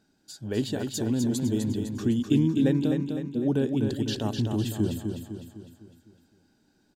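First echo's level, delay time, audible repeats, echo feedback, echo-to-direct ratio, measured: -5.5 dB, 253 ms, 5, 49%, -4.5 dB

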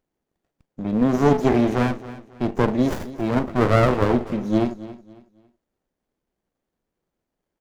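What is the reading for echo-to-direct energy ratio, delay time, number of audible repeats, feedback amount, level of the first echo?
-16.0 dB, 275 ms, 2, 30%, -16.5 dB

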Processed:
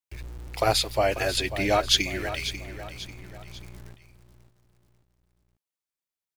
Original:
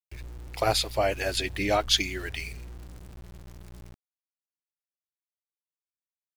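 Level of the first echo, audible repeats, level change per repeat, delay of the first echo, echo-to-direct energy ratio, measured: -12.0 dB, 3, -7.5 dB, 542 ms, -11.0 dB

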